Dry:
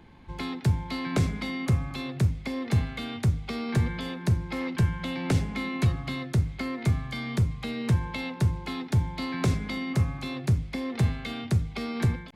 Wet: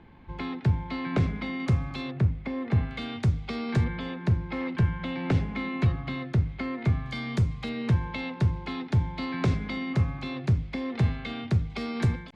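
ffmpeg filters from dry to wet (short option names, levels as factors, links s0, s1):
-af "asetnsamples=n=441:p=0,asendcmd='1.6 lowpass f 5200;2.11 lowpass f 2200;2.91 lowpass f 5400;3.84 lowpass f 3100;7.06 lowpass f 6700;7.69 lowpass f 4100;11.7 lowpass f 7100',lowpass=3000"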